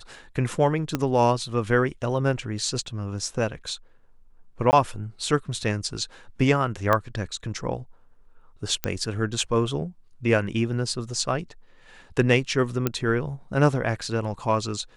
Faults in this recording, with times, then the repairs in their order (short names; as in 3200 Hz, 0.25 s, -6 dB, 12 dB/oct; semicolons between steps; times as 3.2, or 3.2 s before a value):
0.95 pop -10 dBFS
4.71–4.73 gap 19 ms
6.93 pop -9 dBFS
8.84 pop -8 dBFS
12.87 pop -8 dBFS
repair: de-click; interpolate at 4.71, 19 ms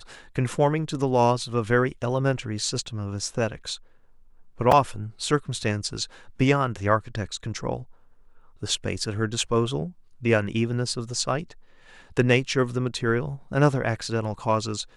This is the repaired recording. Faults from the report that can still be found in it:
0.95 pop
8.84 pop
12.87 pop